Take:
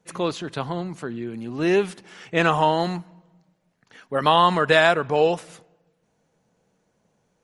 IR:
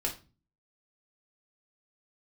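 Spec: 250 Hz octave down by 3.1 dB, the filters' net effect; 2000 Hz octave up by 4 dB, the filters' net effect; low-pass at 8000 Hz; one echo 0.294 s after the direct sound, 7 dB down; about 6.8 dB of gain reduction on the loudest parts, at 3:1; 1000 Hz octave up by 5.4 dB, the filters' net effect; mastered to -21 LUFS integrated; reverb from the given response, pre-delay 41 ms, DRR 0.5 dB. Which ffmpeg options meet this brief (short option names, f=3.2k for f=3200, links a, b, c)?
-filter_complex "[0:a]lowpass=8k,equalizer=f=250:t=o:g=-6,equalizer=f=1k:t=o:g=6,equalizer=f=2k:t=o:g=3,acompressor=threshold=-16dB:ratio=3,aecho=1:1:294:0.447,asplit=2[a][b];[1:a]atrim=start_sample=2205,adelay=41[c];[b][c]afir=irnorm=-1:irlink=0,volume=-4.5dB[d];[a][d]amix=inputs=2:normalize=0,volume=-2dB"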